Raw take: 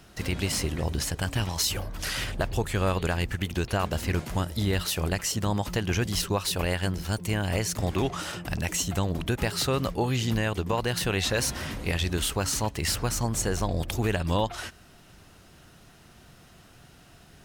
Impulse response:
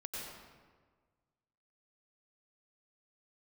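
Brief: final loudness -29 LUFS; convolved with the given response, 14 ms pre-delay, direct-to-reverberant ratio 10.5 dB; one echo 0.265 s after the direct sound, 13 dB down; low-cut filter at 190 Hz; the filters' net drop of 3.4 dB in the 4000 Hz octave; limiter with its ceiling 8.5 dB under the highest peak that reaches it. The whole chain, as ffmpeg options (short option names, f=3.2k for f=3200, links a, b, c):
-filter_complex "[0:a]highpass=190,equalizer=f=4k:t=o:g=-4.5,alimiter=limit=-20dB:level=0:latency=1,aecho=1:1:265:0.224,asplit=2[a][b];[1:a]atrim=start_sample=2205,adelay=14[c];[b][c]afir=irnorm=-1:irlink=0,volume=-10.5dB[d];[a][d]amix=inputs=2:normalize=0,volume=3.5dB"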